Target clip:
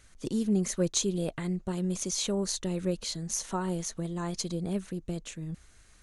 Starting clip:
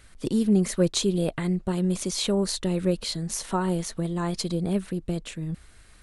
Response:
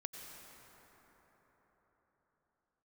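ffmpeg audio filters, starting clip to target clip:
-af "equalizer=frequency=6400:width_type=o:width=0.34:gain=10,volume=-6dB"

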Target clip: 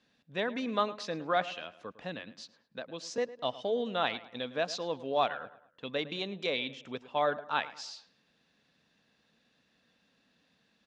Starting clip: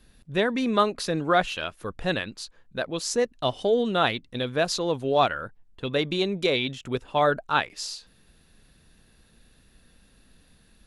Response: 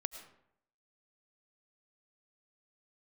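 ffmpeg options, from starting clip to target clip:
-filter_complex "[0:a]highpass=230,equalizer=frequency=370:width_type=q:width=4:gain=-8,equalizer=frequency=1400:width_type=q:width=4:gain=-3,equalizer=frequency=4400:width_type=q:width=4:gain=-3,lowpass=frequency=5900:width=0.5412,lowpass=frequency=5900:width=1.3066,asettb=1/sr,asplit=3[link_01][link_02][link_03];[link_01]atrim=end=1.444[link_04];[link_02]atrim=start=1.44:end=3.18,asetpts=PTS-STARTPTS,afade=type=in:duration=0.004:curve=qsin,afade=type=out:start_time=1.736:duration=0.004:curve=qsin,acrossover=split=340[link_05][link_06];[link_06]acompressor=threshold=-32dB:ratio=6[link_07];[link_05][link_07]amix=inputs=2:normalize=0[link_08];[link_03]atrim=start=3.176[link_09];[link_04][link_08]acrossfade=duration=0.004:curve1=hsin:curve2=qsin[link_10];[link_10][link_09]acrossfade=duration=0.004:curve1=qsin:curve2=hsin,asplit=2[link_11][link_12];[link_12]adelay=107,lowpass=frequency=3100:poles=1,volume=-16dB,asplit=2[link_13][link_14];[link_14]adelay=107,lowpass=frequency=3100:poles=1,volume=0.43,asplit=2[link_15][link_16];[link_16]adelay=107,lowpass=frequency=3100:poles=1,volume=0.43,asplit=2[link_17][link_18];[link_18]adelay=107,lowpass=frequency=3100:poles=1,volume=0.43[link_19];[link_11][link_13][link_15][link_17][link_19]amix=inputs=5:normalize=0,volume=-6.5dB"

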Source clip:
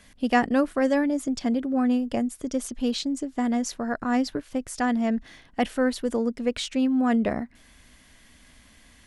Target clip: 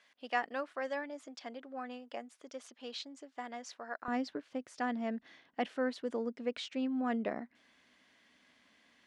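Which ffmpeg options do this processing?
ffmpeg -i in.wav -af "asetnsamples=nb_out_samples=441:pad=0,asendcmd='4.08 highpass f 260',highpass=650,lowpass=4500,volume=-9dB" out.wav

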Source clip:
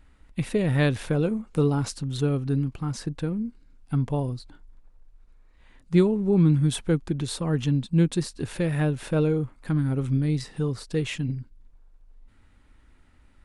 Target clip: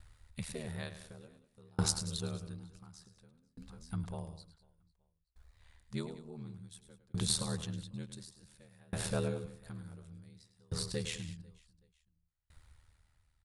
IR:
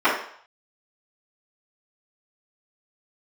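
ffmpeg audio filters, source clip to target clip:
-filter_complex "[0:a]equalizer=frequency=280:width=1.5:gain=-15,aeval=exprs='val(0)*sin(2*PI*39*n/s)':channel_layout=same,highshelf=frequency=7300:gain=-5,asplit=2[link_01][link_02];[link_02]aecho=0:1:105|192|495|872:0.299|0.224|0.119|0.106[link_03];[link_01][link_03]amix=inputs=2:normalize=0,aexciter=amount=4.1:drive=1.2:freq=3800,aeval=exprs='val(0)*pow(10,-34*if(lt(mod(0.56*n/s,1),2*abs(0.56)/1000),1-mod(0.56*n/s,1)/(2*abs(0.56)/1000),(mod(0.56*n/s,1)-2*abs(0.56)/1000)/(1-2*abs(0.56)/1000))/20)':channel_layout=same,volume=1dB"

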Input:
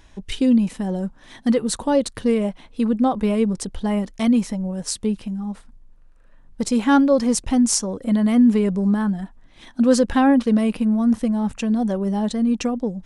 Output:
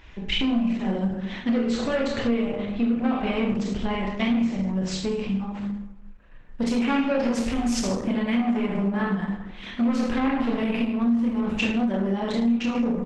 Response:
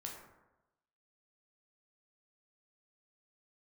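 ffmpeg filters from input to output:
-filter_complex "[0:a]asoftclip=type=tanh:threshold=-16.5dB,asplit=3[link_01][link_02][link_03];[link_01]afade=type=out:start_time=1.52:duration=0.02[link_04];[link_02]asuperstop=centerf=920:order=12:qfactor=6.4,afade=type=in:start_time=1.52:duration=0.02,afade=type=out:start_time=2.96:duration=0.02[link_05];[link_03]afade=type=in:start_time=2.96:duration=0.02[link_06];[link_04][link_05][link_06]amix=inputs=3:normalize=0,aemphasis=mode=reproduction:type=75fm,bandreject=frequency=50:width_type=h:width=6,bandreject=frequency=100:width_type=h:width=6,bandreject=frequency=150:width_type=h:width=6,bandreject=frequency=200:width_type=h:width=6,bandreject=frequency=250:width_type=h:width=6,bandreject=frequency=300:width_type=h:width=6,bandreject=frequency=350:width_type=h:width=6,bandreject=frequency=400:width_type=h:width=6,bandreject=frequency=450:width_type=h:width=6,asplit=2[link_07][link_08];[link_08]adelay=26,volume=-8.5dB[link_09];[link_07][link_09]amix=inputs=2:normalize=0,aecho=1:1:30|64.5|104.2|149.8|202.3:0.631|0.398|0.251|0.158|0.1,asplit=2[link_10][link_11];[1:a]atrim=start_sample=2205,lowshelf=frequency=89:gain=11,adelay=46[link_12];[link_11][link_12]afir=irnorm=-1:irlink=0,volume=-2dB[link_13];[link_10][link_13]amix=inputs=2:normalize=0,acompressor=threshold=-20dB:ratio=4,equalizer=frequency=2600:width_type=o:width=1.3:gain=12,volume=-1dB" -ar 48000 -c:a libopus -b:a 12k

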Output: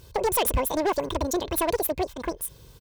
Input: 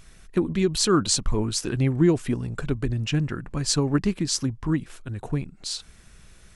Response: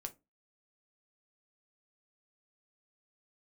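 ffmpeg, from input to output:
-af "aecho=1:1:4.5:0.44,asetrate=103194,aresample=44100,highpass=45,asoftclip=type=hard:threshold=-19dB"

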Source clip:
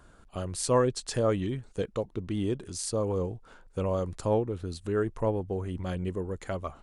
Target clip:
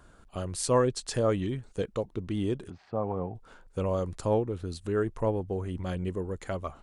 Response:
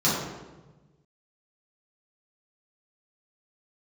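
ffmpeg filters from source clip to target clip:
-filter_complex "[0:a]asplit=3[link_01][link_02][link_03];[link_01]afade=type=out:start_time=2.69:duration=0.02[link_04];[link_02]highpass=110,equalizer=frequency=330:width_type=q:width=4:gain=-5,equalizer=frequency=480:width_type=q:width=4:gain=-6,equalizer=frequency=750:width_type=q:width=4:gain=10,lowpass=frequency=2200:width=0.5412,lowpass=frequency=2200:width=1.3066,afade=type=in:start_time=2.69:duration=0.02,afade=type=out:start_time=3.34:duration=0.02[link_05];[link_03]afade=type=in:start_time=3.34:duration=0.02[link_06];[link_04][link_05][link_06]amix=inputs=3:normalize=0"

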